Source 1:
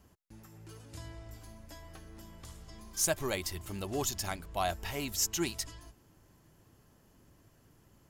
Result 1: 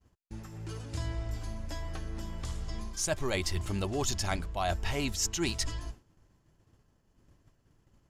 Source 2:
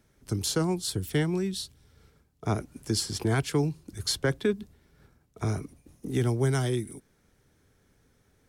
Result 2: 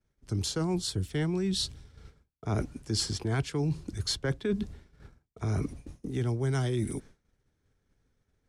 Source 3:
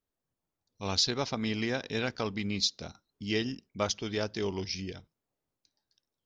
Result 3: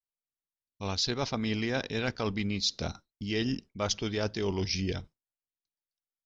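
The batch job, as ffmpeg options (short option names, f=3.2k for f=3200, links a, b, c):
-af "lowpass=7.8k,agate=range=-33dB:threshold=-52dB:ratio=3:detection=peak,lowshelf=f=63:g=10.5,areverse,acompressor=threshold=-36dB:ratio=6,areverse,volume=8.5dB"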